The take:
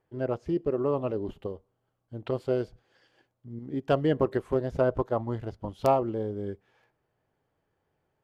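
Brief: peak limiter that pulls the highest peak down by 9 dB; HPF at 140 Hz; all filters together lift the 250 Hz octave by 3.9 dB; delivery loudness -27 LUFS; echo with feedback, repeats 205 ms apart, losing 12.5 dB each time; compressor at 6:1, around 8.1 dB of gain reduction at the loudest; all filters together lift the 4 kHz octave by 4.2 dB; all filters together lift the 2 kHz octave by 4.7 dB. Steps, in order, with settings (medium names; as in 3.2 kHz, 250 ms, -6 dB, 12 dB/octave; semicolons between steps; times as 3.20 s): high-pass 140 Hz; peaking EQ 250 Hz +5.5 dB; peaking EQ 2 kHz +6 dB; peaking EQ 4 kHz +3 dB; compression 6:1, threshold -25 dBFS; peak limiter -21.5 dBFS; feedback delay 205 ms, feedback 24%, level -12.5 dB; trim +7 dB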